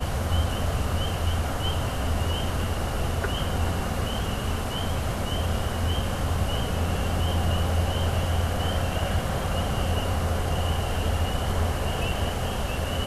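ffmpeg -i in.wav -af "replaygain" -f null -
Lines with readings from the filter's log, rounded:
track_gain = +12.5 dB
track_peak = 0.173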